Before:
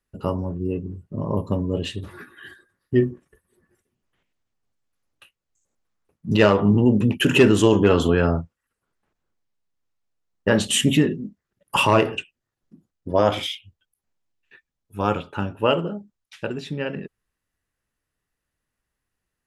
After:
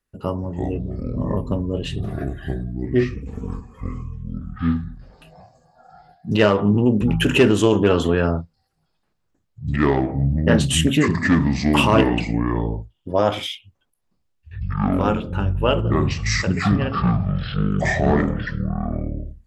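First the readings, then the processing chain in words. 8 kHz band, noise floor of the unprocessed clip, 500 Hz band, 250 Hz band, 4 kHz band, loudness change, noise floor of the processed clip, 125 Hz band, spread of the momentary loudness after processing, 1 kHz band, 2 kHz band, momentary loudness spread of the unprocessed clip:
+0.5 dB, −83 dBFS, +1.0 dB, +3.0 dB, +0.5 dB, +0.5 dB, −70 dBFS, +5.5 dB, 15 LU, +2.0 dB, +2.5 dB, 17 LU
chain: delay with pitch and tempo change per echo 220 ms, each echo −7 semitones, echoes 2
highs frequency-modulated by the lows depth 0.13 ms

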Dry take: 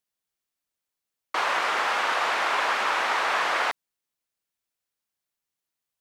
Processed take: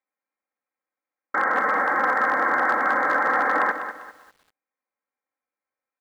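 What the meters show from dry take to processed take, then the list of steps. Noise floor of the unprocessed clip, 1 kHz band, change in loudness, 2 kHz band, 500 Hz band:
below −85 dBFS, +3.5 dB, +3.0 dB, +4.0 dB, +4.5 dB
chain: voice inversion scrambler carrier 2,500 Hz
high-frequency loss of the air 410 metres
comb filter 3.8 ms, depth 72%
hard clipping −17.5 dBFS, distortion −28 dB
high-pass filter 350 Hz 12 dB per octave
on a send: single-tap delay 176 ms −20.5 dB
on the sum: feedback echo at a low word length 198 ms, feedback 35%, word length 9 bits, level −10 dB
level +4.5 dB

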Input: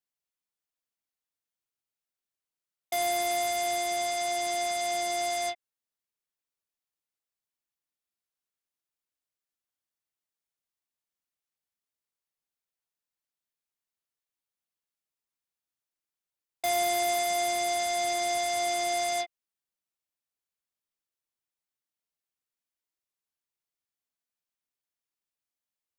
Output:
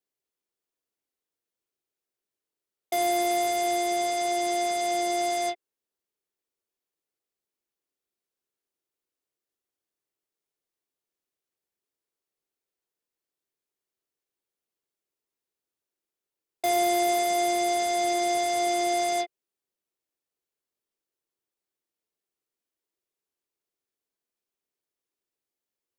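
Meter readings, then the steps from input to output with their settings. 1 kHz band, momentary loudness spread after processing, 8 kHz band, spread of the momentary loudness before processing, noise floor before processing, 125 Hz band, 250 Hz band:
+3.5 dB, 6 LU, 0.0 dB, 6 LU, below −85 dBFS, can't be measured, +11.0 dB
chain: parametric band 390 Hz +12.5 dB 1 octave

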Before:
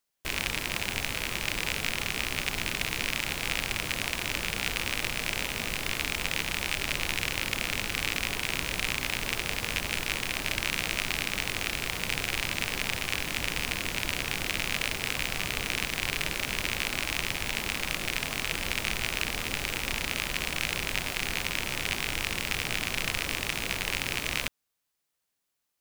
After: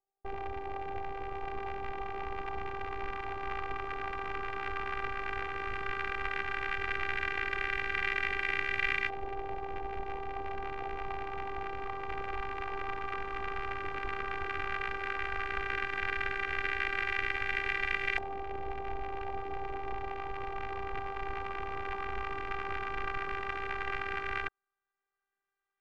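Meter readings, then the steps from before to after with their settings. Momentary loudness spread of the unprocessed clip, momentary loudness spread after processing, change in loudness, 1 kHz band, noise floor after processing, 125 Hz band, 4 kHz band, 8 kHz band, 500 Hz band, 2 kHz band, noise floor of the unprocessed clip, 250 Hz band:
1 LU, 8 LU, −6.0 dB, +3.5 dB, below −85 dBFS, −9.0 dB, −16.5 dB, below −30 dB, +0.5 dB, −4.5 dB, −81 dBFS, −8.5 dB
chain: auto-filter low-pass saw up 0.11 Hz 740–1,900 Hz
pitch vibrato 0.9 Hz 9.5 cents
phases set to zero 394 Hz

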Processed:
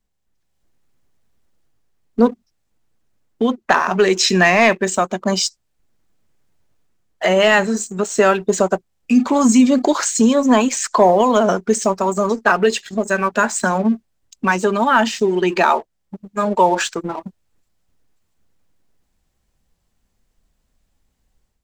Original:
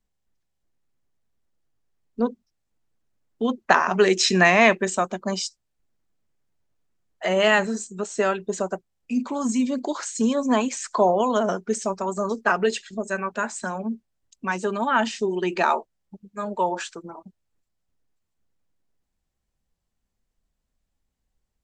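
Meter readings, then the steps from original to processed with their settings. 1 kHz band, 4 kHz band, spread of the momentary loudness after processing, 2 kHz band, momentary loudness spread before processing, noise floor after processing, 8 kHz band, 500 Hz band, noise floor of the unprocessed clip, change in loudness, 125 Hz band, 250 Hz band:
+6.5 dB, +6.0 dB, 9 LU, +5.0 dB, 13 LU, −70 dBFS, +8.5 dB, +7.0 dB, −78 dBFS, +7.0 dB, +7.0 dB, +8.5 dB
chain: in parallel at +0.5 dB: downward compressor, threshold −29 dBFS, peak gain reduction 17 dB
on the sum: leveller curve on the samples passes 1
automatic gain control gain up to 8 dB
level −1 dB

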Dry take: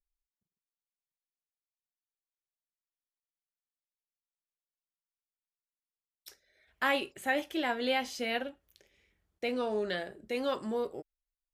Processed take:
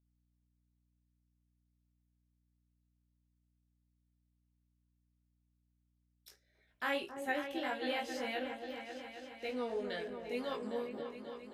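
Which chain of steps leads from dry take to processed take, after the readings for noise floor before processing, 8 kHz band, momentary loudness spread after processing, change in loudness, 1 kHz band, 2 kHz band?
below −85 dBFS, −7.0 dB, 8 LU, −6.5 dB, −5.5 dB, −6.0 dB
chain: chorus effect 1.8 Hz, delay 18.5 ms, depth 3 ms
echo whose low-pass opens from repeat to repeat 269 ms, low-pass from 750 Hz, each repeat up 2 octaves, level −6 dB
mains hum 60 Hz, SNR 34 dB
level −4 dB

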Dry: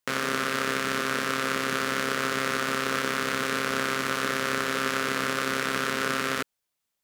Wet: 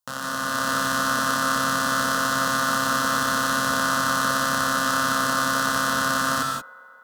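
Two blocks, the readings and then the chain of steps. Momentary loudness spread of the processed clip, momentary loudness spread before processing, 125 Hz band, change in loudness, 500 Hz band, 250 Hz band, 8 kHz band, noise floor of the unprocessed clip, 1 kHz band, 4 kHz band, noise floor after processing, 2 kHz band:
3 LU, 0 LU, +4.5 dB, +4.5 dB, 0.0 dB, +3.5 dB, +8.0 dB, −82 dBFS, +7.5 dB, +3.5 dB, −46 dBFS, +4.0 dB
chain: automatic gain control gain up to 8.5 dB
phaser with its sweep stopped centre 930 Hz, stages 4
delay with a band-pass on its return 133 ms, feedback 76%, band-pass 790 Hz, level −21 dB
reverb whose tail is shaped and stops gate 200 ms rising, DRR 0.5 dB

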